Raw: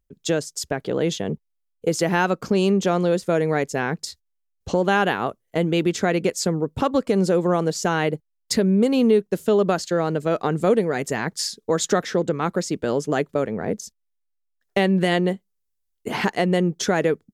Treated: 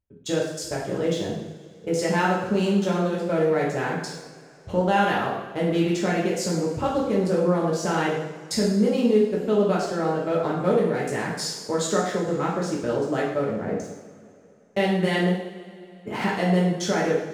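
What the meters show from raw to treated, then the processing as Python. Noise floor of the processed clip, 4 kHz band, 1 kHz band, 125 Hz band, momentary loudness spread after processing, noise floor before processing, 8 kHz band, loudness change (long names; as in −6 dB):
−49 dBFS, −3.0 dB, −1.0 dB, −1.5 dB, 9 LU, −74 dBFS, −3.5 dB, −2.0 dB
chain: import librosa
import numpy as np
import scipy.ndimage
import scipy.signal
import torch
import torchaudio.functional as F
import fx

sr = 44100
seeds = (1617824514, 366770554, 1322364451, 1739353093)

y = fx.wiener(x, sr, points=9)
y = fx.rev_double_slope(y, sr, seeds[0], early_s=0.76, late_s=3.0, knee_db=-18, drr_db=-5.5)
y = y * librosa.db_to_amplitude(-8.0)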